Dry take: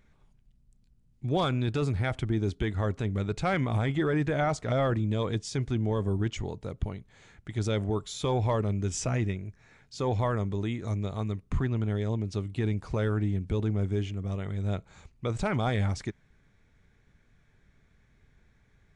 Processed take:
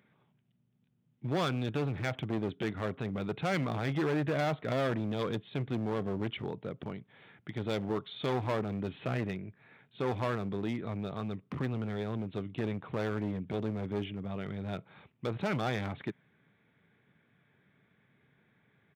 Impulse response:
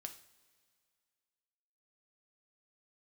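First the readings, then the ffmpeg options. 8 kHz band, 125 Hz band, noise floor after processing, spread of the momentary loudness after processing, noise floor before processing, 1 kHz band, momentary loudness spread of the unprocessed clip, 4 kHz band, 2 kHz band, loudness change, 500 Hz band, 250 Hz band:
under -10 dB, -8.0 dB, -72 dBFS, 9 LU, -65 dBFS, -3.5 dB, 9 LU, -3.0 dB, -2.0 dB, -5.0 dB, -3.0 dB, -3.0 dB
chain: -af "aresample=8000,aresample=44100,asoftclip=type=hard:threshold=0.0447,highpass=f=130:w=0.5412,highpass=f=130:w=1.3066"

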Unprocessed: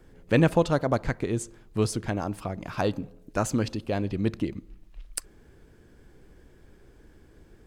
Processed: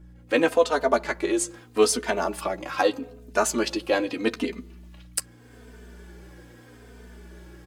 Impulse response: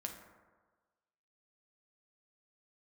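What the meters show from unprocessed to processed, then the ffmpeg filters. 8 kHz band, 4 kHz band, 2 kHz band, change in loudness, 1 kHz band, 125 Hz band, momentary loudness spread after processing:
+8.5 dB, +8.0 dB, +6.5 dB, +3.0 dB, +5.5 dB, -15.5 dB, 10 LU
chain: -filter_complex "[0:a]highpass=f=240:w=0.5412,highpass=f=240:w=1.3066,lowshelf=f=310:g=-10.5,dynaudnorm=f=150:g=3:m=6.31,aeval=exprs='val(0)+0.00891*(sin(2*PI*60*n/s)+sin(2*PI*2*60*n/s)/2+sin(2*PI*3*60*n/s)/3+sin(2*PI*4*60*n/s)/4+sin(2*PI*5*60*n/s)/5)':c=same,asplit=2[s0][s1];[s1]adelay=12,volume=0.335[s2];[s0][s2]amix=inputs=2:normalize=0,asplit=2[s3][s4];[s4]adelay=3.1,afreqshift=-0.8[s5];[s3][s5]amix=inputs=2:normalize=1,volume=0.794"

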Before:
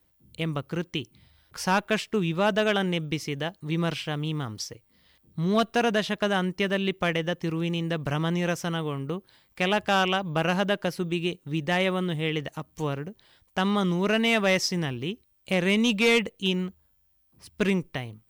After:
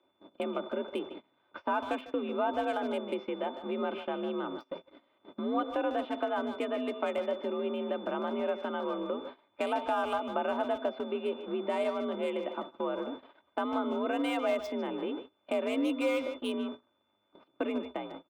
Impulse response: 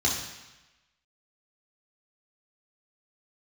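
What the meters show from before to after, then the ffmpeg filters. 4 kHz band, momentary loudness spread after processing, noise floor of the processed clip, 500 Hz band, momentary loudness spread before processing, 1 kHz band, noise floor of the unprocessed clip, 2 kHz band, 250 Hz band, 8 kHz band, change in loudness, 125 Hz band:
-14.0 dB, 8 LU, -74 dBFS, -3.5 dB, 12 LU, -4.0 dB, -67 dBFS, -12.5 dB, -7.0 dB, under -15 dB, -7.0 dB, under -25 dB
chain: -filter_complex "[0:a]aeval=exprs='val(0)+0.5*0.02*sgn(val(0))':c=same,acrossover=split=220 2100:gain=0.0708 1 0.112[s0][s1][s2];[s0][s1][s2]amix=inputs=3:normalize=0,afreqshift=58,bandreject=f=129.3:t=h:w=4,bandreject=f=258.6:t=h:w=4,bandreject=f=387.9:t=h:w=4,bandreject=f=517.2:t=h:w=4,bandreject=f=646.5:t=h:w=4,bandreject=f=775.8:t=h:w=4,bandreject=f=905.1:t=h:w=4,bandreject=f=1034.4:t=h:w=4,bandreject=f=1163.7:t=h:w=4,bandreject=f=1293:t=h:w=4,bandreject=f=1422.3:t=h:w=4,acrossover=split=130|3100[s3][s4][s5];[s5]acrusher=bits=5:mix=0:aa=0.5[s6];[s3][s4][s6]amix=inputs=3:normalize=0,aecho=1:1:3.3:0.42,acompressor=threshold=0.01:ratio=2,asplit=2[s7][s8];[s8]adelay=150,highpass=300,lowpass=3400,asoftclip=type=hard:threshold=0.0282,volume=0.355[s9];[s7][s9]amix=inputs=2:normalize=0,aeval=exprs='val(0)+0.00141*sin(2*PI*3500*n/s)':c=same,equalizer=f=1800:t=o:w=0.33:g=-13.5,agate=range=0.0501:threshold=0.00631:ratio=16:detection=peak,volume=1.68"

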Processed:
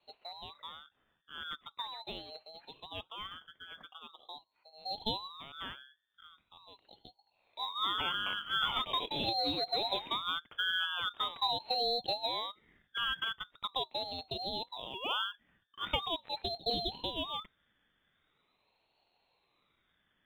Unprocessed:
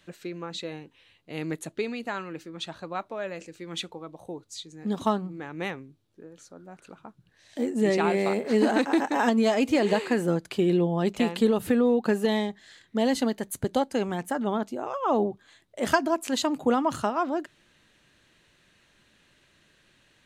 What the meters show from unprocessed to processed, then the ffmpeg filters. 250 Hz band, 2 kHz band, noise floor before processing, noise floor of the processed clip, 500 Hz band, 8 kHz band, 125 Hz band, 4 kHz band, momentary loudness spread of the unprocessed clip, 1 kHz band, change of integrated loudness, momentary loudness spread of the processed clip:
-23.0 dB, -5.5 dB, -64 dBFS, -78 dBFS, -16.5 dB, under -20 dB, -17.0 dB, +5.0 dB, 15 LU, -7.0 dB, -8.5 dB, 18 LU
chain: -af "lowpass=f=2300:t=q:w=0.5098,lowpass=f=2300:t=q:w=0.6013,lowpass=f=2300:t=q:w=0.9,lowpass=f=2300:t=q:w=2.563,afreqshift=-2700,acrusher=bits=8:mode=log:mix=0:aa=0.000001,aeval=exprs='val(0)*sin(2*PI*1300*n/s+1300*0.35/0.42*sin(2*PI*0.42*n/s))':c=same,volume=0.398"

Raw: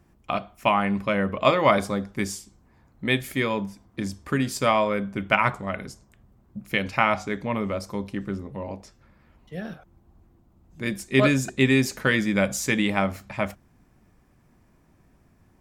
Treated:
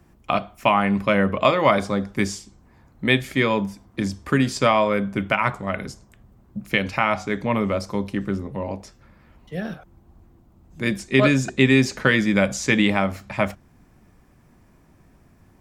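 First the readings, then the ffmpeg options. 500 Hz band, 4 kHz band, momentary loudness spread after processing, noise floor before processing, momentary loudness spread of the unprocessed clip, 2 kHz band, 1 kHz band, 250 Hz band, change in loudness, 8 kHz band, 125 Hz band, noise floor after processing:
+3.0 dB, +3.0 dB, 13 LU, -60 dBFS, 15 LU, +3.0 dB, +2.0 dB, +4.0 dB, +3.0 dB, 0.0 dB, +3.5 dB, -55 dBFS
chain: -filter_complex "[0:a]acrossover=split=100|7500[s0][s1][s2];[s2]acompressor=threshold=0.00158:ratio=6[s3];[s0][s1][s3]amix=inputs=3:normalize=0,alimiter=limit=0.355:level=0:latency=1:release=404,volume=1.78"

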